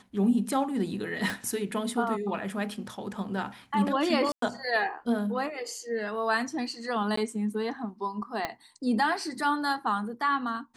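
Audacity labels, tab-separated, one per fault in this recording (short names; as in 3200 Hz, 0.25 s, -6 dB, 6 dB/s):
1.300000	1.300000	pop
4.320000	4.420000	gap 0.103 s
7.160000	7.170000	gap 14 ms
8.450000	8.450000	pop -15 dBFS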